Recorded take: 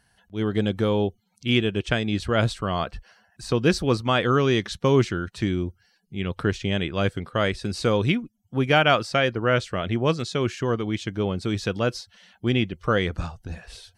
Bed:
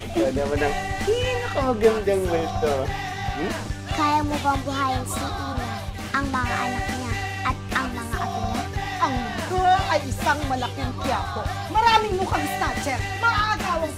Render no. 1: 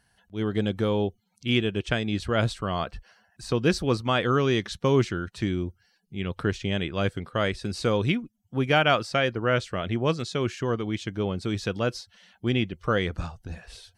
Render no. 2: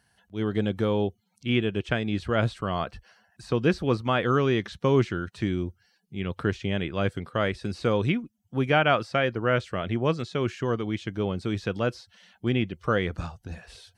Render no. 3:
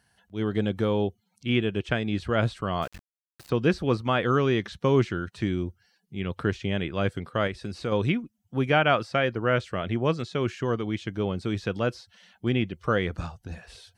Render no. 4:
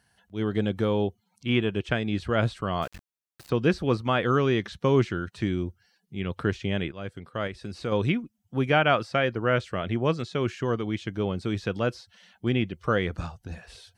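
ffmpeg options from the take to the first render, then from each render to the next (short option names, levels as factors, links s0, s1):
-af "volume=0.75"
-filter_complex "[0:a]acrossover=split=3200[s0][s1];[s1]acompressor=threshold=0.00447:ratio=4:attack=1:release=60[s2];[s0][s2]amix=inputs=2:normalize=0,highpass=58"
-filter_complex "[0:a]asettb=1/sr,asplit=3[s0][s1][s2];[s0]atrim=end=2.824[s3];[s1]atrim=start=2.82:end=3.5,asetpts=PTS-STARTPTS,afade=t=in:d=0.004:c=qsin,afade=t=out:st=0.676:d=0.004:c=qsin,aeval=exprs='val(0)*gte(abs(val(0)),0.01)':c=same[s4];[s2]atrim=start=3.496[s5];[s3][s4]acrossfade=d=0.004:c1=hsin:c2=qsin[s6];[s6][s5]acrossfade=d=0.004:c1=qsin:c2=hsin,asettb=1/sr,asplit=3[s7][s8][s9];[s7]atrim=end=7.474[s10];[s8]atrim=start=7.47:end=7.92,asetpts=PTS-STARTPTS,afade=t=in:d=0.004:c=qsin,afade=t=out:st=0.446:d=0.004:c=qsin,acompressor=threshold=0.02:ratio=1.5:attack=3.2:release=140:knee=1:detection=peak[s11];[s9]atrim=start=7.916[s12];[s10][s11]acrossfade=d=0.004:c1=hsin:c2=qsin[s13];[s13][s12]acrossfade=d=0.004:c1=qsin:c2=hsin"
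-filter_complex "[0:a]asettb=1/sr,asplit=3[s0][s1][s2];[s0]atrim=end=1.084[s3];[s1]atrim=start=1.08:end=1.75,asetpts=PTS-STARTPTS,afade=t=in:d=0.004:c=qsin,afade=t=out:st=0.666:d=0.004:c=qsin,equalizer=f=1000:w=2.2:g=6.5[s4];[s2]atrim=start=1.746[s5];[s3][s4]acrossfade=d=0.004:c1=hsin:c2=qsin[s6];[s6][s5]acrossfade=d=0.004:c1=qsin:c2=hsin,asplit=2[s7][s8];[s7]atrim=end=6.92,asetpts=PTS-STARTPTS,afade=t=out:st=6.916:d=0.004:c=hsin:silence=0.223872[s9];[s8]atrim=start=6.92,asetpts=PTS-STARTPTS,afade=t=in:d=1.05:silence=0.223872[s10];[s9][s10]concat=n=2:v=0:a=1"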